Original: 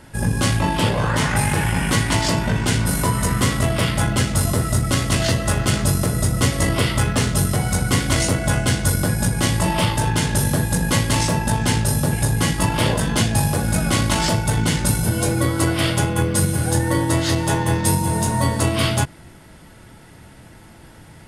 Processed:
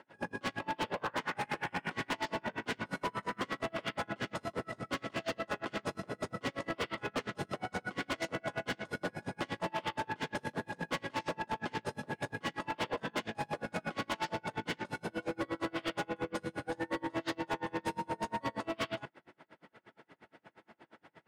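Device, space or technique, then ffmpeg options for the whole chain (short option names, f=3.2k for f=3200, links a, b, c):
helicopter radio: -af "highpass=330,lowpass=2.6k,aeval=exprs='val(0)*pow(10,-35*(0.5-0.5*cos(2*PI*8.5*n/s))/20)':c=same,asoftclip=type=hard:threshold=-26dB,volume=-3.5dB"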